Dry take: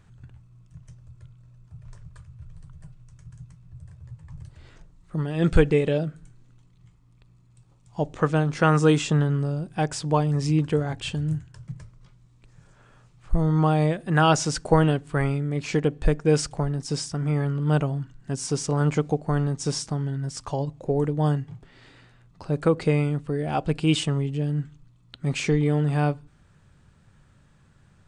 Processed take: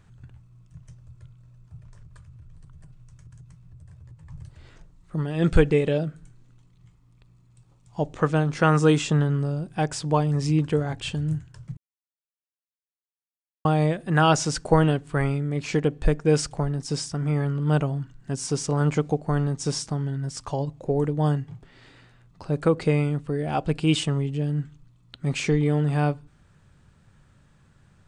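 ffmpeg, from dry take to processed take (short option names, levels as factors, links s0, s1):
-filter_complex "[0:a]asettb=1/sr,asplit=3[s0][s1][s2];[s0]atrim=end=1.784[s3];[s1]atrim=start=1.78:end=4.26,asetpts=PTS-STARTPTS,afade=t=in:d=0.004:c=qsin,afade=t=out:st=2.476:d=0.004:c=qsin,acompressor=threshold=0.00794:ratio=6:attack=3.2:release=140:knee=1:detection=peak[s4];[s2]atrim=start=4.256[s5];[s3][s4]acrossfade=d=0.004:c1=hsin:c2=qsin[s6];[s6][s5]acrossfade=d=0.004:c1=qsin:c2=hsin,asplit=3[s7][s8][s9];[s7]atrim=end=11.77,asetpts=PTS-STARTPTS,afade=t=out:st=11.766:d=0.004:c=hsin[s10];[s8]atrim=start=11.77:end=13.65,asetpts=PTS-STARTPTS,volume=0[s11];[s9]atrim=start=13.65,asetpts=PTS-STARTPTS,afade=t=in:d=0.004:c=hsin[s12];[s10][s11][s12]concat=n=3:v=0:a=1"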